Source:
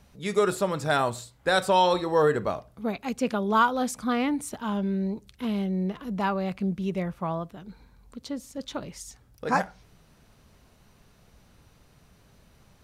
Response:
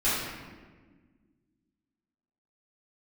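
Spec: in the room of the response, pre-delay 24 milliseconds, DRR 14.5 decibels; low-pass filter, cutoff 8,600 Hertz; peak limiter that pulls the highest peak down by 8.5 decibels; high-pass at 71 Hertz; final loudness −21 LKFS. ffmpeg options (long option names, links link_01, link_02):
-filter_complex "[0:a]highpass=71,lowpass=8600,alimiter=limit=-17.5dB:level=0:latency=1,asplit=2[link_01][link_02];[1:a]atrim=start_sample=2205,adelay=24[link_03];[link_02][link_03]afir=irnorm=-1:irlink=0,volume=-27dB[link_04];[link_01][link_04]amix=inputs=2:normalize=0,volume=8.5dB"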